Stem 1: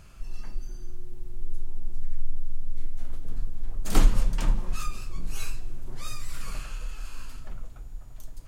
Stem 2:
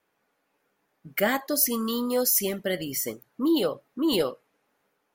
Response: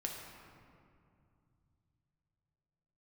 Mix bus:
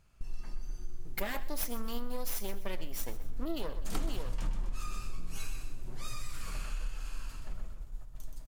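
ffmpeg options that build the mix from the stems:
-filter_complex "[0:a]agate=range=-12dB:threshold=-38dB:ratio=16:detection=peak,volume=-5.5dB,asplit=3[link_01][link_02][link_03];[link_02]volume=-11dB[link_04];[link_03]volume=-4.5dB[link_05];[1:a]aeval=exprs='max(val(0),0)':channel_layout=same,volume=-4dB,asplit=2[link_06][link_07];[link_07]volume=-16.5dB[link_08];[2:a]atrim=start_sample=2205[link_09];[link_04][link_09]afir=irnorm=-1:irlink=0[link_10];[link_05][link_08]amix=inputs=2:normalize=0,aecho=0:1:126|252|378|504|630:1|0.35|0.122|0.0429|0.015[link_11];[link_01][link_06][link_10][link_11]amix=inputs=4:normalize=0,acompressor=threshold=-28dB:ratio=6"

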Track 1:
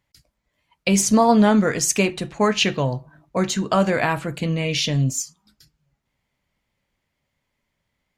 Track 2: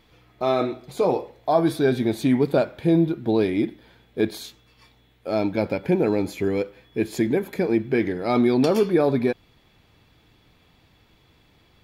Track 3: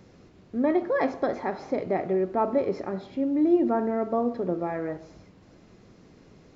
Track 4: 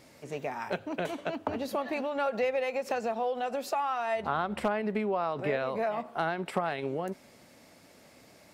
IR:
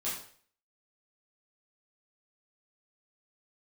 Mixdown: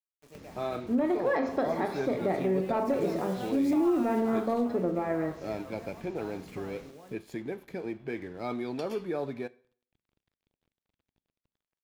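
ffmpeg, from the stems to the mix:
-filter_complex "[1:a]bass=frequency=250:gain=9,treble=frequency=4000:gain=-4,acrossover=split=370|3000[link_01][link_02][link_03];[link_01]acompressor=threshold=-30dB:ratio=6[link_04];[link_04][link_02][link_03]amix=inputs=3:normalize=0,aeval=exprs='sgn(val(0))*max(abs(val(0))-0.00562,0)':channel_layout=same,adelay=150,volume=-12dB,asplit=2[link_05][link_06];[link_06]volume=-21dB[link_07];[2:a]acompressor=mode=upward:threshold=-45dB:ratio=2.5,asoftclip=type=tanh:threshold=-14.5dB,adelay=350,volume=-1dB,asplit=2[link_08][link_09];[link_09]volume=-9dB[link_10];[3:a]acrusher=bits=6:mix=0:aa=0.000001,volume=-9.5dB,afade=type=in:start_time=2.67:duration=0.39:silence=0.375837,afade=type=out:start_time=4.13:duration=0.44:silence=0.298538,asplit=2[link_11][link_12];[link_12]volume=-7.5dB[link_13];[4:a]atrim=start_sample=2205[link_14];[link_07][link_10][link_13]amix=inputs=3:normalize=0[link_15];[link_15][link_14]afir=irnorm=-1:irlink=0[link_16];[link_05][link_08][link_11][link_16]amix=inputs=4:normalize=0,alimiter=limit=-19dB:level=0:latency=1:release=160"

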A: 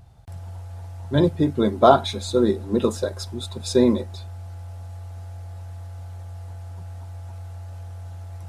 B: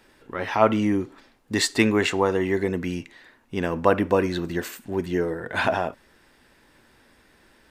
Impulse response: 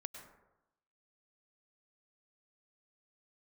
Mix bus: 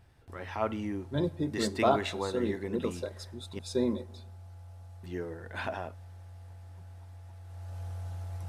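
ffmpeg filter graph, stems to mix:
-filter_complex "[0:a]volume=-3.5dB,afade=type=in:start_time=7.44:duration=0.42:silence=0.334965,asplit=2[link_01][link_02];[link_02]volume=-11.5dB[link_03];[1:a]volume=-13dB,asplit=3[link_04][link_05][link_06];[link_04]atrim=end=3.59,asetpts=PTS-STARTPTS,afade=type=out:start_time=3.586:duration=0.004:curve=hsin[link_07];[link_05]atrim=start=3.59:end=5.03,asetpts=PTS-STARTPTS,volume=0[link_08];[link_06]atrim=start=5.03,asetpts=PTS-STARTPTS,afade=type=in:duration=0.004:curve=hsin[link_09];[link_07][link_08][link_09]concat=n=3:v=0:a=1[link_10];[2:a]atrim=start_sample=2205[link_11];[link_03][link_11]afir=irnorm=-1:irlink=0[link_12];[link_01][link_10][link_12]amix=inputs=3:normalize=0,equalizer=frequency=7100:width=7.8:gain=-2.5"

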